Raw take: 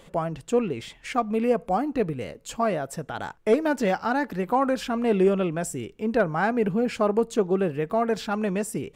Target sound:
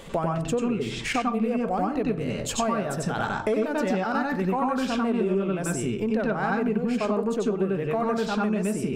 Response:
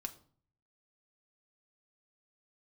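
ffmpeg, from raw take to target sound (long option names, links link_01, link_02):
-filter_complex "[0:a]acontrast=88,asplit=2[link_01][link_02];[link_02]lowpass=7200[link_03];[1:a]atrim=start_sample=2205,adelay=93[link_04];[link_03][link_04]afir=irnorm=-1:irlink=0,volume=5dB[link_05];[link_01][link_05]amix=inputs=2:normalize=0,acompressor=threshold=-24dB:ratio=5"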